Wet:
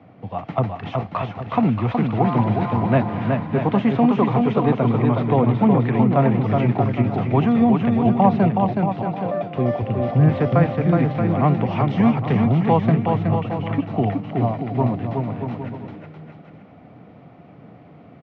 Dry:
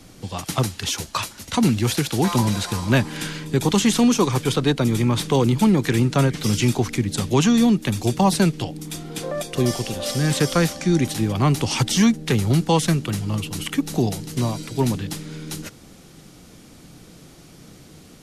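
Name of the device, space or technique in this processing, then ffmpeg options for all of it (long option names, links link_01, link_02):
bass cabinet: -filter_complex "[0:a]highpass=80,equalizer=frequency=110:width_type=q:width=4:gain=3,equalizer=frequency=350:width_type=q:width=4:gain=-5,equalizer=frequency=690:width_type=q:width=4:gain=9,equalizer=frequency=1600:width_type=q:width=4:gain=-7,lowpass=frequency=2100:width=0.5412,lowpass=frequency=2100:width=1.3066,asettb=1/sr,asplit=3[link_01][link_02][link_03];[link_01]atrim=end=9.824[link_04];[link_02]atrim=start=9.82:end=10.29,asetpts=PTS-STARTPTS,afade=type=in:duration=0.004:curve=qsin,afade=type=out:start_time=0.466:duration=0.004:curve=qsin,aemphasis=mode=reproduction:type=bsi[link_05];[link_03]atrim=start=10.286[link_06];[link_04][link_05]acrossfade=duration=0.004:curve1=hsin:curve2=qsin[link_07];[link_07][link_06]acrossfade=duration=0.004:curve1=qsin:curve2=hsin,highpass=88,aecho=1:1:370|629|810.3|937.2|1026:0.631|0.398|0.251|0.158|0.1"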